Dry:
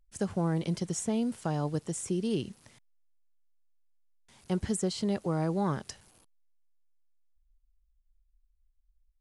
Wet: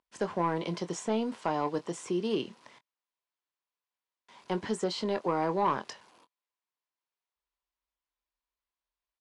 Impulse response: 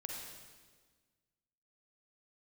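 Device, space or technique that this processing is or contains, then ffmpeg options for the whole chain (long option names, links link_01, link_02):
intercom: -filter_complex "[0:a]highpass=320,lowpass=4200,equalizer=frequency=1000:width_type=o:width=0.27:gain=10,asoftclip=type=tanh:threshold=-23dB,asplit=2[link_01][link_02];[link_02]adelay=23,volume=-11dB[link_03];[link_01][link_03]amix=inputs=2:normalize=0,volume=4.5dB"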